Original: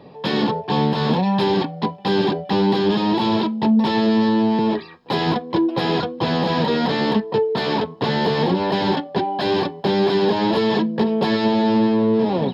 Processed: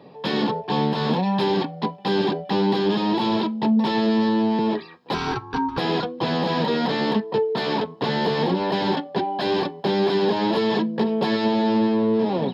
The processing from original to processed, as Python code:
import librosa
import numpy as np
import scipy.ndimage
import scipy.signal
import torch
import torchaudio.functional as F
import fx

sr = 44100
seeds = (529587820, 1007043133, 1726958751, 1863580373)

y = scipy.signal.sosfilt(scipy.signal.butter(2, 130.0, 'highpass', fs=sr, output='sos'), x)
y = fx.ring_mod(y, sr, carrier_hz=600.0, at=(5.14, 5.78))
y = y * librosa.db_to_amplitude(-2.5)